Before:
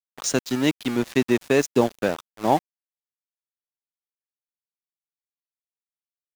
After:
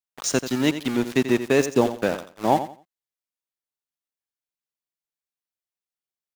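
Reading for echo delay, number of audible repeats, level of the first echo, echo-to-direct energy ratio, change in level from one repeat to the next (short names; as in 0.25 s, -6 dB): 87 ms, 2, -11.5 dB, -11.0 dB, -12.5 dB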